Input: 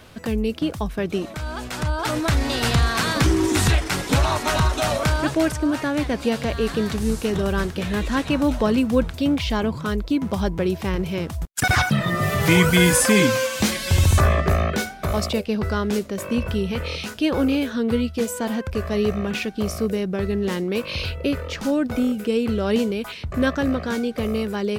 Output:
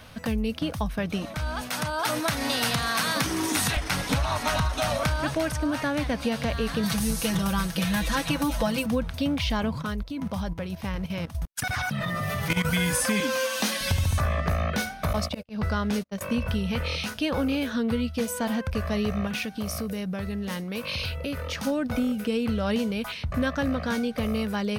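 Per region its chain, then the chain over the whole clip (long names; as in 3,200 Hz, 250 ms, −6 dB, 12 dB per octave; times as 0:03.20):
0:01.61–0:03.77: high-pass filter 170 Hz + high-shelf EQ 8,900 Hz +9 dB
0:06.83–0:08.86: high-shelf EQ 5,500 Hz +11 dB + comb filter 6 ms, depth 79%
0:09.82–0:12.65: output level in coarse steps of 14 dB + hard clipping −10 dBFS
0:13.20–0:13.81: high-pass filter 230 Hz 24 dB per octave + notch filter 2,200 Hz, Q 11
0:15.13–0:16.21: noise gate −27 dBFS, range −39 dB + high-shelf EQ 8,900 Hz −4 dB + volume swells 151 ms
0:19.27–0:21.67: high-pass filter 57 Hz + high-shelf EQ 7,800 Hz +6.5 dB + downward compressor 2.5 to 1, threshold −27 dBFS
whole clip: parametric band 370 Hz −14.5 dB 0.36 octaves; notch filter 7,400 Hz, Q 6.6; downward compressor 5 to 1, threshold −22 dBFS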